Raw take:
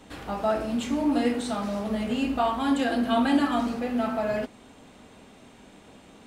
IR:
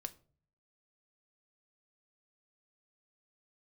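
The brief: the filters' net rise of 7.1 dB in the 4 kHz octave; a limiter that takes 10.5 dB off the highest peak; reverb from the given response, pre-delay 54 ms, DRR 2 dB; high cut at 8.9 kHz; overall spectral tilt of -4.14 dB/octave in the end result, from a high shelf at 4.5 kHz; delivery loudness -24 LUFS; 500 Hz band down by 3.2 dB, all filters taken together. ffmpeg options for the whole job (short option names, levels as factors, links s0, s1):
-filter_complex "[0:a]lowpass=8900,equalizer=f=500:t=o:g=-5,equalizer=f=4000:t=o:g=5.5,highshelf=f=4500:g=8.5,alimiter=limit=0.0841:level=0:latency=1,asplit=2[s0][s1];[1:a]atrim=start_sample=2205,adelay=54[s2];[s1][s2]afir=irnorm=-1:irlink=0,volume=1.12[s3];[s0][s3]amix=inputs=2:normalize=0,volume=1.5"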